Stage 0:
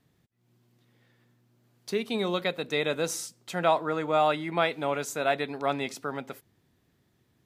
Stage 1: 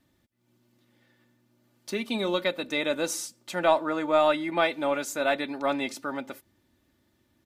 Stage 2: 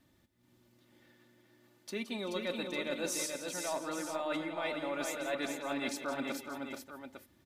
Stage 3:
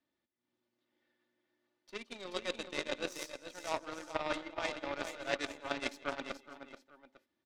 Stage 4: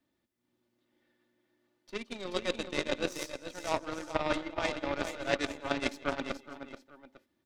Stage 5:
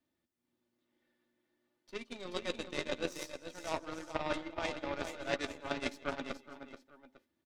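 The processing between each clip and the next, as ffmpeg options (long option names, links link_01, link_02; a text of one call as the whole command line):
ffmpeg -i in.wav -af "aecho=1:1:3.4:0.63,aeval=exprs='0.355*(cos(1*acos(clip(val(0)/0.355,-1,1)))-cos(1*PI/2))+0.0158*(cos(2*acos(clip(val(0)/0.355,-1,1)))-cos(2*PI/2))':channel_layout=same" out.wav
ffmpeg -i in.wav -af "areverse,acompressor=threshold=-34dB:ratio=10,areverse,aecho=1:1:169|385|430|583|852:0.266|0.126|0.562|0.168|0.335" out.wav
ffmpeg -i in.wav -filter_complex "[0:a]acrossover=split=250 6000:gain=0.178 1 0.112[link_01][link_02][link_03];[link_01][link_02][link_03]amix=inputs=3:normalize=0,aeval=exprs='0.0668*(cos(1*acos(clip(val(0)/0.0668,-1,1)))-cos(1*PI/2))+0.0188*(cos(3*acos(clip(val(0)/0.0668,-1,1)))-cos(3*PI/2))+0.00075*(cos(6*acos(clip(val(0)/0.0668,-1,1)))-cos(6*PI/2))+0.000668*(cos(7*acos(clip(val(0)/0.0668,-1,1)))-cos(7*PI/2))':channel_layout=same,volume=7.5dB" out.wav
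ffmpeg -i in.wav -af "lowshelf=frequency=310:gain=8,volume=3.5dB" out.wav
ffmpeg -i in.wav -filter_complex "[0:a]asplit=2[link_01][link_02];[link_02]adelay=12,volume=-11dB[link_03];[link_01][link_03]amix=inputs=2:normalize=0,volume=-5dB" out.wav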